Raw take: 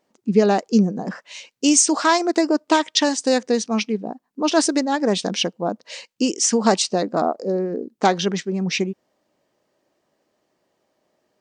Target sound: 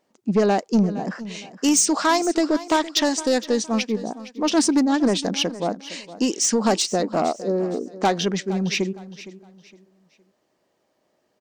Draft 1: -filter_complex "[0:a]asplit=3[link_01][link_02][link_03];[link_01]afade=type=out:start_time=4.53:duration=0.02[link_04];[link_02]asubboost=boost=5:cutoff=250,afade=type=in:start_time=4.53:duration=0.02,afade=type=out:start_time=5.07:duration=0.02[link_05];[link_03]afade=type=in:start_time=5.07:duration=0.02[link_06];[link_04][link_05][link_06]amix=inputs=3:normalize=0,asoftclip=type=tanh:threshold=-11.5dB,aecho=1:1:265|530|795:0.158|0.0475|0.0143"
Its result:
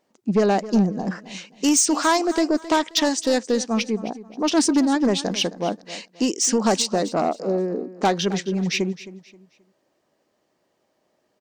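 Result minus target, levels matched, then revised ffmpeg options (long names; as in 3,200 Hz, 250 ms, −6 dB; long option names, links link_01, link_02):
echo 198 ms early
-filter_complex "[0:a]asplit=3[link_01][link_02][link_03];[link_01]afade=type=out:start_time=4.53:duration=0.02[link_04];[link_02]asubboost=boost=5:cutoff=250,afade=type=in:start_time=4.53:duration=0.02,afade=type=out:start_time=5.07:duration=0.02[link_05];[link_03]afade=type=in:start_time=5.07:duration=0.02[link_06];[link_04][link_05][link_06]amix=inputs=3:normalize=0,asoftclip=type=tanh:threshold=-11.5dB,aecho=1:1:463|926|1389:0.158|0.0475|0.0143"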